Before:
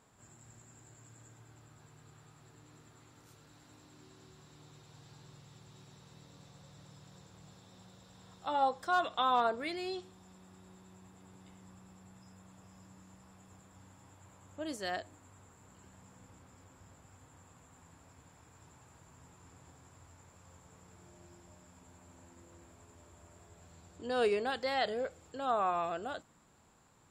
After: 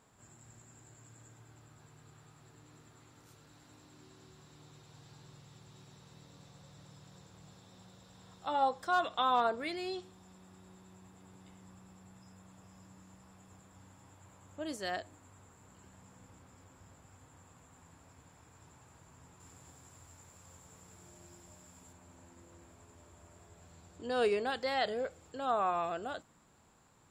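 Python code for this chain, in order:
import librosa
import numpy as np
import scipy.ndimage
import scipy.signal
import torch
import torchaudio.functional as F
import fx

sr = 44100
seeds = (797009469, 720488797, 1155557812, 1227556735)

y = fx.high_shelf(x, sr, hz=4700.0, db=8.5, at=(19.4, 21.93))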